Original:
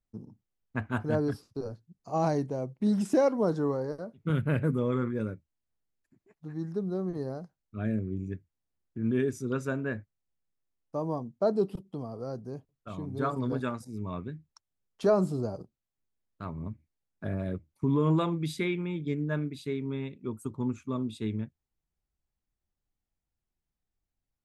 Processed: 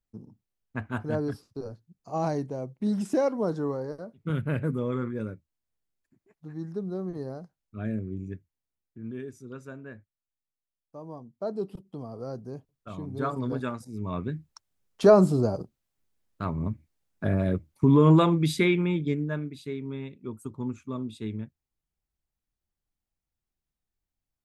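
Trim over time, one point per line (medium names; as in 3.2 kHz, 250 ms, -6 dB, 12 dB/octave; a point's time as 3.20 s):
8.33 s -1 dB
9.22 s -10.5 dB
10.97 s -10.5 dB
12.20 s +0.5 dB
13.90 s +0.5 dB
14.34 s +7.5 dB
18.92 s +7.5 dB
19.40 s -1.5 dB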